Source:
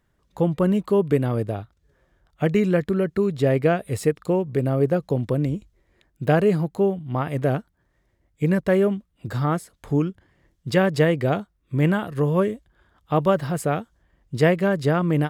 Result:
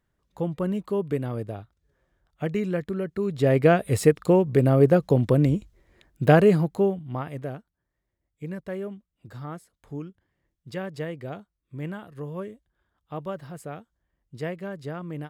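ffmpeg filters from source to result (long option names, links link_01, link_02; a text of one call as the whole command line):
ffmpeg -i in.wav -af "volume=3dB,afade=type=in:start_time=3.17:duration=0.63:silence=0.316228,afade=type=out:start_time=6.25:duration=0.97:silence=0.316228,afade=type=out:start_time=7.22:duration=0.34:silence=0.446684" out.wav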